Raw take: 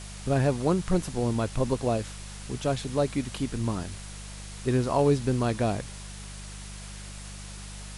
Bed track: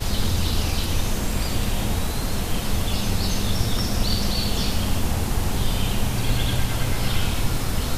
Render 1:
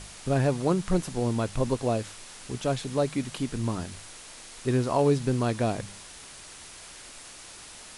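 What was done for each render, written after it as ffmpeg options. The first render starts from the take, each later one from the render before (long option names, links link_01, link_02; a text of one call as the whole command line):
ffmpeg -i in.wav -af "bandreject=frequency=50:width_type=h:width=4,bandreject=frequency=100:width_type=h:width=4,bandreject=frequency=150:width_type=h:width=4,bandreject=frequency=200:width_type=h:width=4" out.wav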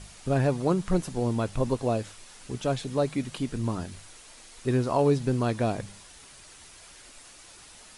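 ffmpeg -i in.wav -af "afftdn=noise_reduction=6:noise_floor=-46" out.wav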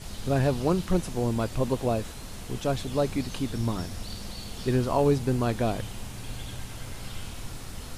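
ffmpeg -i in.wav -i bed.wav -filter_complex "[1:a]volume=-15.5dB[link_01];[0:a][link_01]amix=inputs=2:normalize=0" out.wav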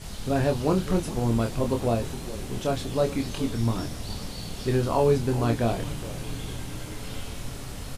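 ffmpeg -i in.wav -filter_complex "[0:a]asplit=2[link_01][link_02];[link_02]adelay=26,volume=-5dB[link_03];[link_01][link_03]amix=inputs=2:normalize=0,asplit=8[link_04][link_05][link_06][link_07][link_08][link_09][link_10][link_11];[link_05]adelay=412,afreqshift=-140,volume=-13dB[link_12];[link_06]adelay=824,afreqshift=-280,volume=-17dB[link_13];[link_07]adelay=1236,afreqshift=-420,volume=-21dB[link_14];[link_08]adelay=1648,afreqshift=-560,volume=-25dB[link_15];[link_09]adelay=2060,afreqshift=-700,volume=-29.1dB[link_16];[link_10]adelay=2472,afreqshift=-840,volume=-33.1dB[link_17];[link_11]adelay=2884,afreqshift=-980,volume=-37.1dB[link_18];[link_04][link_12][link_13][link_14][link_15][link_16][link_17][link_18]amix=inputs=8:normalize=0" out.wav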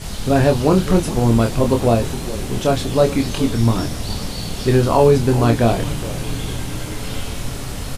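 ffmpeg -i in.wav -af "volume=9.5dB,alimiter=limit=-3dB:level=0:latency=1" out.wav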